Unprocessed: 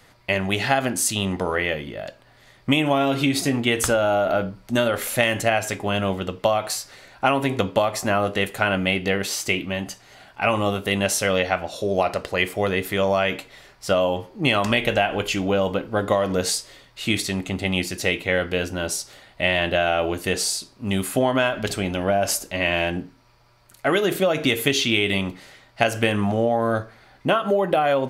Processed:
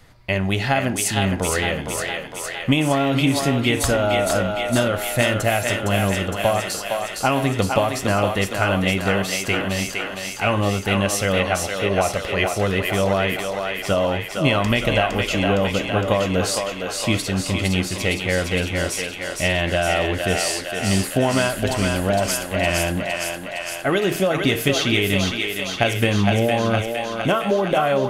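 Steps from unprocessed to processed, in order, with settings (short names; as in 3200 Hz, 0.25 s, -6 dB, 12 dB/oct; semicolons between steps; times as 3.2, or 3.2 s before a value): low shelf 140 Hz +12 dB; thinning echo 0.461 s, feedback 73%, high-pass 460 Hz, level -3.5 dB; gain -1 dB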